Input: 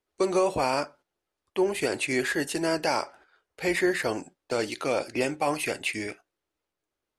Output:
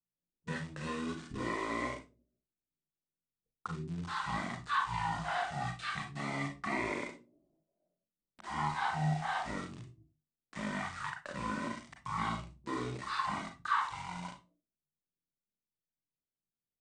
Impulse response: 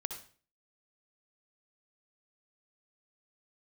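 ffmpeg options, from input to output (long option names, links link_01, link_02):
-filter_complex "[0:a]equalizer=frequency=3300:width=1.1:gain=13,acrossover=split=1200[link_01][link_02];[link_01]flanger=delay=7:depth=3.4:regen=34:speed=0.98:shape=sinusoidal[link_03];[link_02]aeval=exprs='val(0)*gte(abs(val(0)),0.02)':channel_layout=same[link_04];[link_03][link_04]amix=inputs=2:normalize=0,asetrate=18846,aresample=44100[link_05];[1:a]atrim=start_sample=2205,asetrate=79380,aresample=44100[link_06];[link_05][link_06]afir=irnorm=-1:irlink=0,volume=-6dB"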